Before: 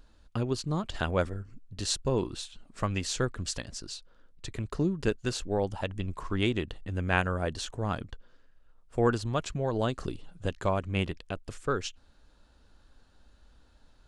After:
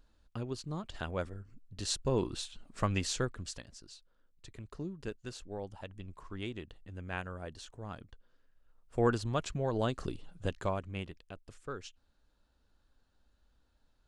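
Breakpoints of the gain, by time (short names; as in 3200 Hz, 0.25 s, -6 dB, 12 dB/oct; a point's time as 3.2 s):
1.31 s -8.5 dB
2.36 s -1 dB
3.02 s -1 dB
3.74 s -12.5 dB
8.1 s -12.5 dB
9.02 s -3 dB
10.54 s -3 dB
11.07 s -12 dB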